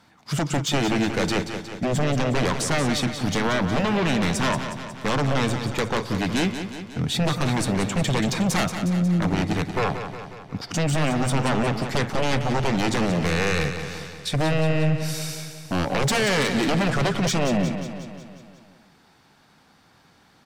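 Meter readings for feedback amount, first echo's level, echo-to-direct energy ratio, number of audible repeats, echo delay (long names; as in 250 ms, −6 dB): 59%, −9.0 dB, −7.0 dB, 6, 181 ms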